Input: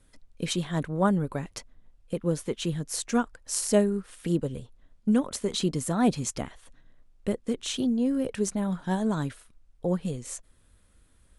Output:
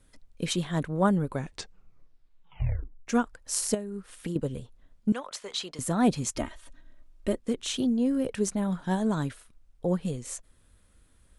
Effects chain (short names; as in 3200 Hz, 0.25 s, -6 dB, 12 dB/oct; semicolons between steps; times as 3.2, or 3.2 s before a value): 1.31 tape stop 1.76 s; 3.74–4.36 compressor 16:1, threshold -30 dBFS, peak gain reduction 15.5 dB; 5.12–5.79 three-band isolator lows -23 dB, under 580 Hz, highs -12 dB, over 6600 Hz; 6.35–7.38 comb 3.2 ms, depth 75%